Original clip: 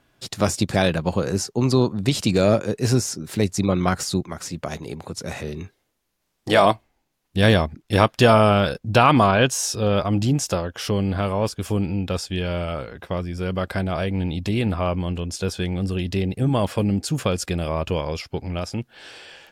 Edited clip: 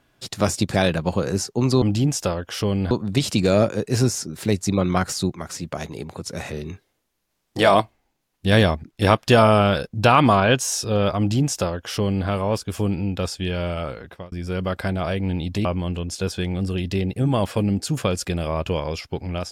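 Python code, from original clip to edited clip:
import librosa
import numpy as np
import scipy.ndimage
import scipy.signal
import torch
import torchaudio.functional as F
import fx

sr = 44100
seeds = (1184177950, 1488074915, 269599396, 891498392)

y = fx.edit(x, sr, fx.duplicate(start_s=10.09, length_s=1.09, to_s=1.82),
    fx.fade_out_span(start_s=12.92, length_s=0.31),
    fx.cut(start_s=14.56, length_s=0.3), tone=tone)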